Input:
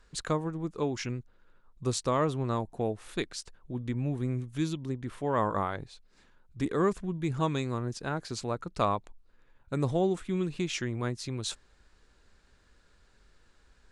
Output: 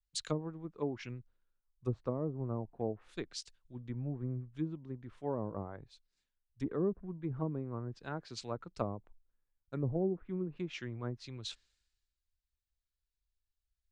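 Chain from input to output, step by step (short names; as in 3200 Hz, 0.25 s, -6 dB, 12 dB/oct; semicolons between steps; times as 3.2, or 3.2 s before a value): treble ducked by the level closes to 440 Hz, closed at -24 dBFS; three-band expander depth 100%; gain -7 dB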